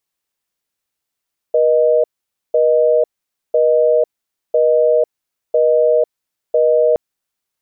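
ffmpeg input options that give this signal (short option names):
-f lavfi -i "aevalsrc='0.237*(sin(2*PI*480*t)+sin(2*PI*620*t))*clip(min(mod(t,1),0.5-mod(t,1))/0.005,0,1)':d=5.42:s=44100"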